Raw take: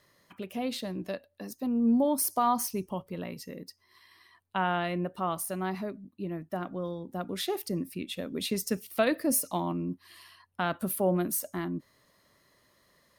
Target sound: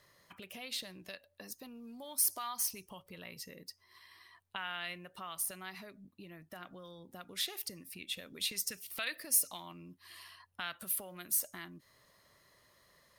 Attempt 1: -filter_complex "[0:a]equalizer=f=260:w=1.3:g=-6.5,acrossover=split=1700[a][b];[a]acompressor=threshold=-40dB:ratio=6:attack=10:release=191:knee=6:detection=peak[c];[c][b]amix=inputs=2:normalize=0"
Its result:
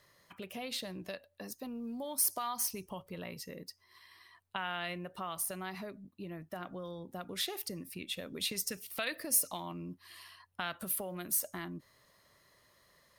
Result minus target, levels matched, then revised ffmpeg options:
compressor: peak gain reduction -9 dB
-filter_complex "[0:a]equalizer=f=260:w=1.3:g=-6.5,acrossover=split=1700[a][b];[a]acompressor=threshold=-50.5dB:ratio=6:attack=10:release=191:knee=6:detection=peak[c];[c][b]amix=inputs=2:normalize=0"

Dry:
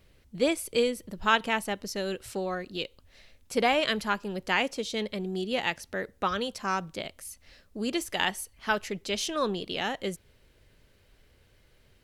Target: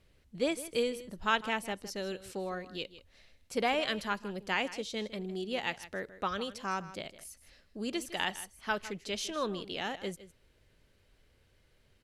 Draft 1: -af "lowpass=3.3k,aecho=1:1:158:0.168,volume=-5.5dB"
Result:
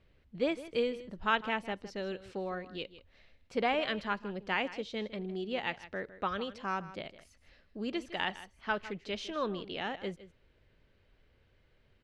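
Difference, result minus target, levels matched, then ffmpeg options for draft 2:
8000 Hz band -14.0 dB
-af "lowpass=13k,aecho=1:1:158:0.168,volume=-5.5dB"

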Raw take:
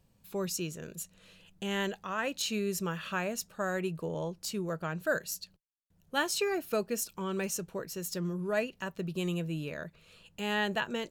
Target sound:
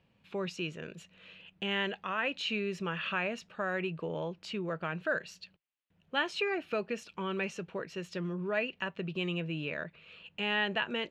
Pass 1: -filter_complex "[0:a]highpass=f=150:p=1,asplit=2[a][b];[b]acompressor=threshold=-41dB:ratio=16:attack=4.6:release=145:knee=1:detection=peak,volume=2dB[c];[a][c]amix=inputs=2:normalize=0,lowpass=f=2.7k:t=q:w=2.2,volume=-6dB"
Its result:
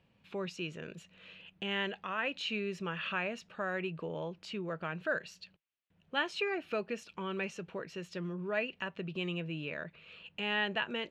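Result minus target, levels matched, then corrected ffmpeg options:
compressor: peak gain reduction +7 dB
-filter_complex "[0:a]highpass=f=150:p=1,asplit=2[a][b];[b]acompressor=threshold=-33.5dB:ratio=16:attack=4.6:release=145:knee=1:detection=peak,volume=2dB[c];[a][c]amix=inputs=2:normalize=0,lowpass=f=2.7k:t=q:w=2.2,volume=-6dB"

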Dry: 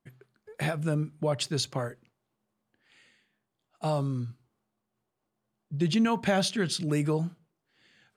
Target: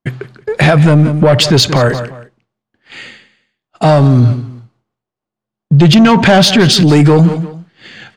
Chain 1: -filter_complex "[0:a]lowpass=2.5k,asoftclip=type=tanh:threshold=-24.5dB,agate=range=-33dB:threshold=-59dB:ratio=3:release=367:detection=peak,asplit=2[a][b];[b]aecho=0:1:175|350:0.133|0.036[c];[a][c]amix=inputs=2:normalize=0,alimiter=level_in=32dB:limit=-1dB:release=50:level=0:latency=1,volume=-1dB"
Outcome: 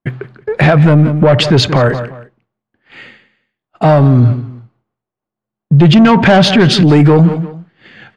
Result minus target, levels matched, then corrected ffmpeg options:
4000 Hz band -3.0 dB
-filter_complex "[0:a]lowpass=5.6k,asoftclip=type=tanh:threshold=-24.5dB,agate=range=-33dB:threshold=-59dB:ratio=3:release=367:detection=peak,asplit=2[a][b];[b]aecho=0:1:175|350:0.133|0.036[c];[a][c]amix=inputs=2:normalize=0,alimiter=level_in=32dB:limit=-1dB:release=50:level=0:latency=1,volume=-1dB"

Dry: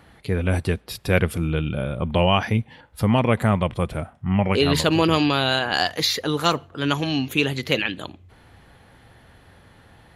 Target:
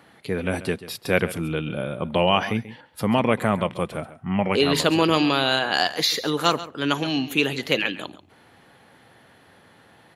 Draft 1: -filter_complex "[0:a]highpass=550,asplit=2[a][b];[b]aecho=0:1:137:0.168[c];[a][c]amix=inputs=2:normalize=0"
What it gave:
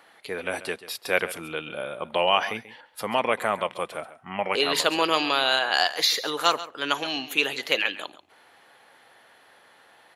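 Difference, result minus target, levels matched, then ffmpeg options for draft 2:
250 Hz band -9.5 dB
-filter_complex "[0:a]highpass=180,asplit=2[a][b];[b]aecho=0:1:137:0.168[c];[a][c]amix=inputs=2:normalize=0"

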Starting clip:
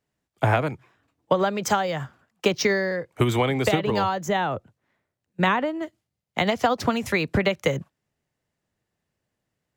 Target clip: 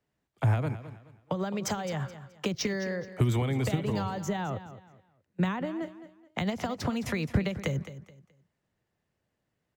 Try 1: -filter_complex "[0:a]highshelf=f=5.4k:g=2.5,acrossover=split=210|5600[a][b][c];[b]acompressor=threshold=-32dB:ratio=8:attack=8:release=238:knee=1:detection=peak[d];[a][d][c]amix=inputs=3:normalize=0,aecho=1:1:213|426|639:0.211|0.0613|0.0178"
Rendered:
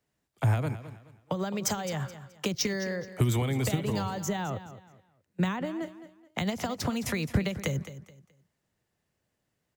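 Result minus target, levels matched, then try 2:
8000 Hz band +5.5 dB
-filter_complex "[0:a]highshelf=f=5.4k:g=-8,acrossover=split=210|5600[a][b][c];[b]acompressor=threshold=-32dB:ratio=8:attack=8:release=238:knee=1:detection=peak[d];[a][d][c]amix=inputs=3:normalize=0,aecho=1:1:213|426|639:0.211|0.0613|0.0178"

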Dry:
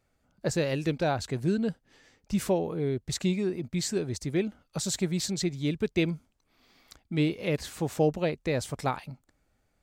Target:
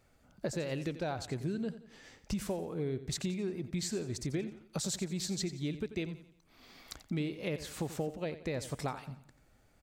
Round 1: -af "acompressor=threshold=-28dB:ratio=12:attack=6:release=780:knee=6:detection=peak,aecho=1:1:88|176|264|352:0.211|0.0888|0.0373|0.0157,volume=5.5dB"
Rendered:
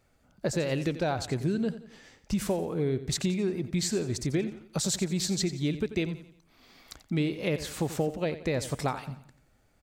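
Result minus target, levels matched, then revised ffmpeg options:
compressor: peak gain reduction -7.5 dB
-af "acompressor=threshold=-36dB:ratio=12:attack=6:release=780:knee=6:detection=peak,aecho=1:1:88|176|264|352:0.211|0.0888|0.0373|0.0157,volume=5.5dB"

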